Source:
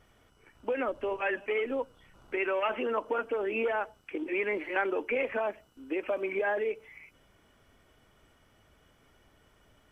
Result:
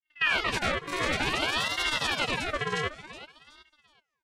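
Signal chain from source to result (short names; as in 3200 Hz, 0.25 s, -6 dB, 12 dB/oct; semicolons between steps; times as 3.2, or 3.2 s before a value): tape start at the beginning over 1.16 s; gate -58 dBFS, range -20 dB; speed mistake 33 rpm record played at 78 rpm; vocoder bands 4, saw 302 Hz; comb 7.5 ms, depth 50%; echoes that change speed 83 ms, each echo +3 st, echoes 2; feedback echo 0.373 s, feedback 33%, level -15 dB; ring modulator with a swept carrier 1600 Hz, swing 55%, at 0.55 Hz; gain +3.5 dB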